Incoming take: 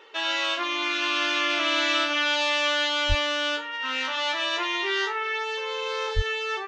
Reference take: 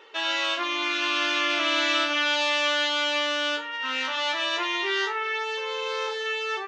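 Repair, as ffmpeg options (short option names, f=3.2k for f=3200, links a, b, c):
-filter_complex "[0:a]asplit=3[a][b][c];[a]afade=t=out:st=3.08:d=0.02[d];[b]highpass=f=140:w=0.5412,highpass=f=140:w=1.3066,afade=t=in:st=3.08:d=0.02,afade=t=out:st=3.2:d=0.02[e];[c]afade=t=in:st=3.2:d=0.02[f];[d][e][f]amix=inputs=3:normalize=0,asplit=3[g][h][i];[g]afade=t=out:st=6.15:d=0.02[j];[h]highpass=f=140:w=0.5412,highpass=f=140:w=1.3066,afade=t=in:st=6.15:d=0.02,afade=t=out:st=6.27:d=0.02[k];[i]afade=t=in:st=6.27:d=0.02[l];[j][k][l]amix=inputs=3:normalize=0"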